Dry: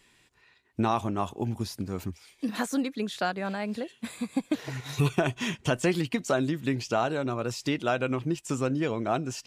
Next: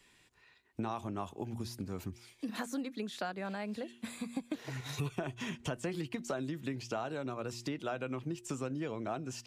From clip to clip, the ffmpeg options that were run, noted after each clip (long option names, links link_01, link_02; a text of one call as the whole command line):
ffmpeg -i in.wav -filter_complex "[0:a]bandreject=frequency=118.7:width_type=h:width=4,bandreject=frequency=237.4:width_type=h:width=4,bandreject=frequency=356.1:width_type=h:width=4,acrossover=split=180|1100|1800[link_01][link_02][link_03][link_04];[link_04]alimiter=level_in=6.5dB:limit=-24dB:level=0:latency=1:release=59,volume=-6.5dB[link_05];[link_01][link_02][link_03][link_05]amix=inputs=4:normalize=0,acompressor=threshold=-34dB:ratio=2.5,volume=-3dB" out.wav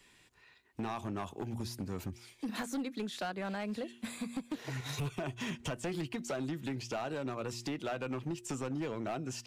ffmpeg -i in.wav -af "volume=33.5dB,asoftclip=hard,volume=-33.5dB,volume=2dB" out.wav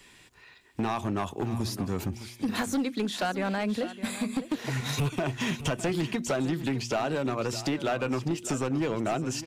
ffmpeg -i in.wav -af "aecho=1:1:609:0.211,volume=8.5dB" out.wav